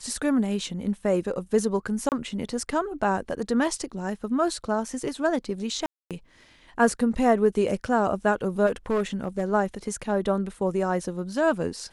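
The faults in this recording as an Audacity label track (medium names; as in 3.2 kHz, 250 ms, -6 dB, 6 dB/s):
2.090000	2.120000	dropout 28 ms
5.860000	6.110000	dropout 247 ms
8.660000	9.440000	clipped -19.5 dBFS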